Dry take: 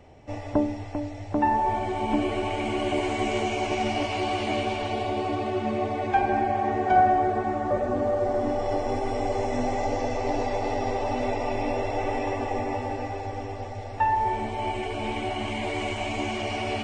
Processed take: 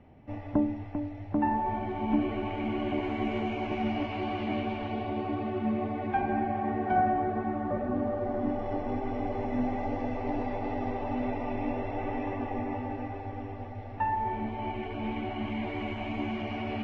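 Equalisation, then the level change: air absorption 170 m; tone controls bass -14 dB, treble -12 dB; resonant low shelf 310 Hz +13 dB, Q 1.5; -4.0 dB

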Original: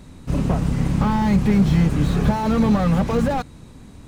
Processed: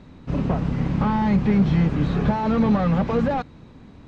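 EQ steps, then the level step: air absorption 190 m; low shelf 100 Hz -7.5 dB; 0.0 dB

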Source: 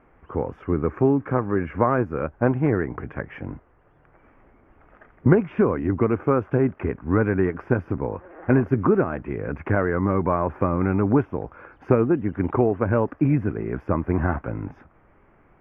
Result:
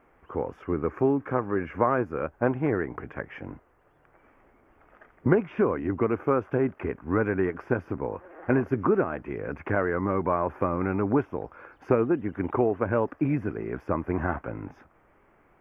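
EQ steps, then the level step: tone controls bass -6 dB, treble +9 dB; -2.5 dB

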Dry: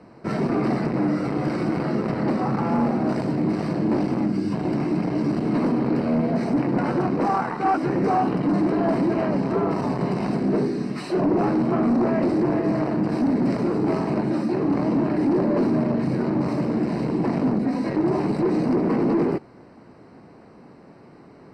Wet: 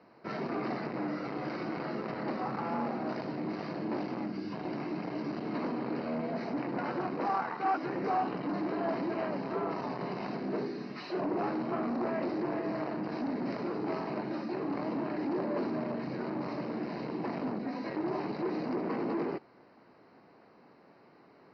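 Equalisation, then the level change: steep low-pass 5300 Hz 48 dB/oct; low shelf 69 Hz -9 dB; low shelf 350 Hz -10.5 dB; -6.5 dB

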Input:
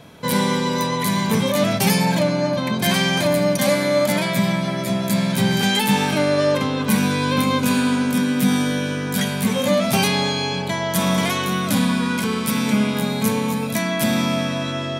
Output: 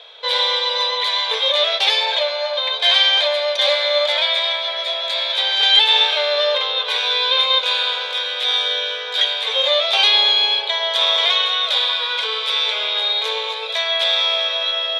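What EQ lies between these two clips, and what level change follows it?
brick-wall FIR high-pass 420 Hz; synth low-pass 3600 Hz, resonance Q 9; -1.0 dB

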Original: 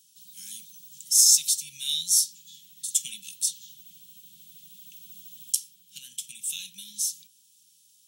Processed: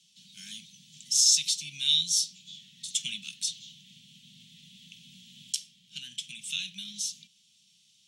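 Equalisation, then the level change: LPF 3500 Hz 12 dB/oct; +8.0 dB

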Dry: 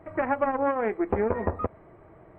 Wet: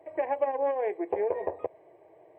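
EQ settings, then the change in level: HPF 290 Hz 12 dB/oct; fixed phaser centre 550 Hz, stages 4; 0.0 dB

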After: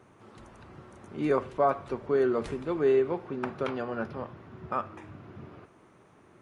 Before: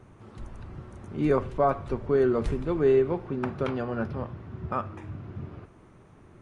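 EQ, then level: HPF 330 Hz 6 dB/oct; 0.0 dB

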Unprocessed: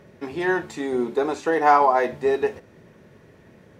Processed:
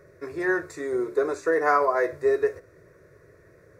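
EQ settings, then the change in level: fixed phaser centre 830 Hz, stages 6; 0.0 dB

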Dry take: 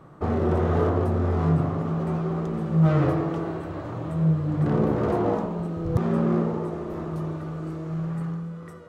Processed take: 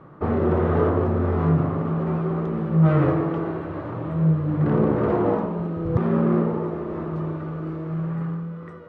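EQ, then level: LPF 2500 Hz 12 dB/oct; low shelf 80 Hz -7 dB; bell 720 Hz -4 dB 0.3 oct; +3.5 dB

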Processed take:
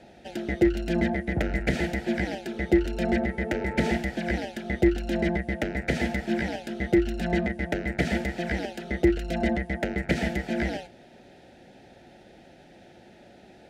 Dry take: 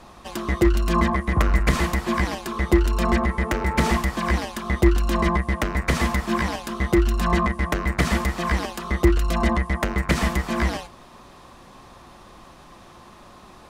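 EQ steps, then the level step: HPF 190 Hz 6 dB/oct; Butterworth band-stop 1100 Hz, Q 1.4; LPF 1900 Hz 6 dB/oct; 0.0 dB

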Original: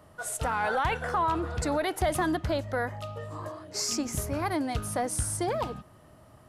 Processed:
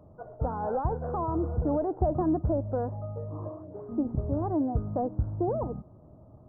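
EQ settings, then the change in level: Gaussian blur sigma 11 samples; +4.0 dB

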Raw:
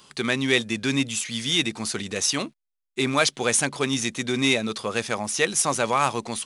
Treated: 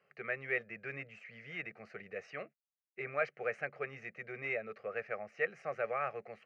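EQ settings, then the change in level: dynamic EQ 1400 Hz, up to +4 dB, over -34 dBFS, Q 1.4; speaker cabinet 210–2500 Hz, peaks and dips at 340 Hz -10 dB, 1000 Hz -9 dB, 1500 Hz -7 dB; fixed phaser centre 950 Hz, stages 6; -8.5 dB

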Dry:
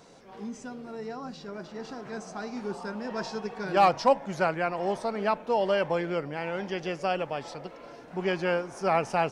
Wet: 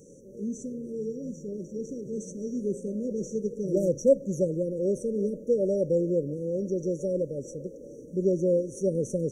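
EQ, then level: brick-wall FIR band-stop 620–5600 Hz; Butterworth band-stop 660 Hz, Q 3.4; +5.0 dB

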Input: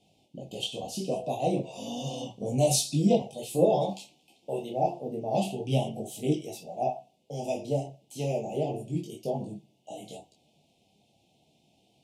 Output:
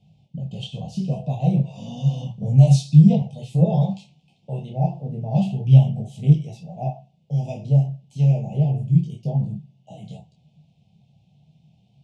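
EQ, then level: air absorption 94 m; resonant low shelf 220 Hz +12 dB, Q 3; -1.0 dB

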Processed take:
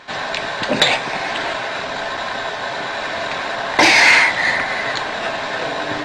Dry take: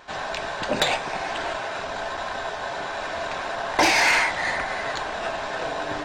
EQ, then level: ten-band EQ 125 Hz +9 dB, 250 Hz +9 dB, 500 Hz +6 dB, 1000 Hz +5 dB, 2000 Hz +10 dB, 4000 Hz +10 dB, 8000 Hz +6 dB; -3.5 dB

